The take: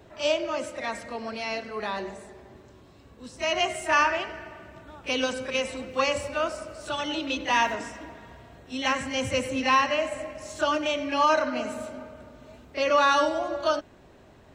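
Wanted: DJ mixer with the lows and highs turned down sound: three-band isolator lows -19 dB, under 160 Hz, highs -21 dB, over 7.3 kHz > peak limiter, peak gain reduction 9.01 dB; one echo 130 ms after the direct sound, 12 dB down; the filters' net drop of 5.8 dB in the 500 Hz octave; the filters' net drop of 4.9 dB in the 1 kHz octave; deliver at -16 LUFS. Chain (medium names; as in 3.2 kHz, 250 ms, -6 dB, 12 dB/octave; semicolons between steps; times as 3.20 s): three-band isolator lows -19 dB, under 160 Hz, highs -21 dB, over 7.3 kHz; peaking EQ 500 Hz -5.5 dB; peaking EQ 1 kHz -4.5 dB; delay 130 ms -12 dB; trim +16.5 dB; peak limiter -5.5 dBFS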